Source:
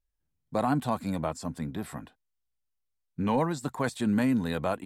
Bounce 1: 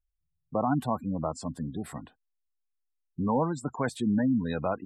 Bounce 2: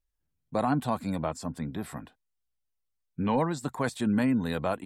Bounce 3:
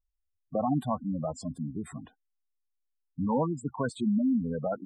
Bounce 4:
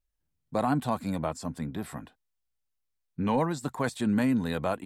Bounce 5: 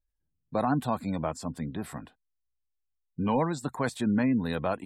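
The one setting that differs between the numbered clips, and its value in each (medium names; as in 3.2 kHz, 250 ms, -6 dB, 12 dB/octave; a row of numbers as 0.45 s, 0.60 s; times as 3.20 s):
spectral gate, under each frame's peak: -20 dB, -45 dB, -10 dB, -60 dB, -35 dB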